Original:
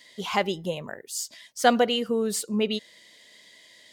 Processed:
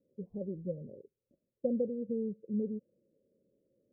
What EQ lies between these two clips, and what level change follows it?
dynamic EQ 400 Hz, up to -8 dB, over -42 dBFS, Q 3.7; rippled Chebyshev low-pass 560 Hz, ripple 3 dB; -4.5 dB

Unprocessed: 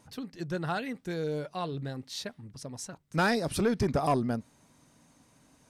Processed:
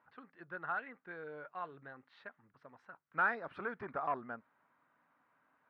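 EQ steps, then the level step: band-pass 1400 Hz, Q 2.4; air absorption 500 m; +3.0 dB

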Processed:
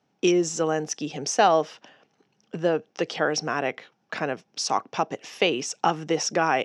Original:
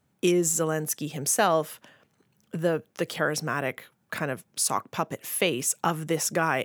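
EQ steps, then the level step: speaker cabinet 170–5800 Hz, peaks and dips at 300 Hz +3 dB, 430 Hz +4 dB, 770 Hz +8 dB, 2800 Hz +4 dB, 5600 Hz +9 dB; 0.0 dB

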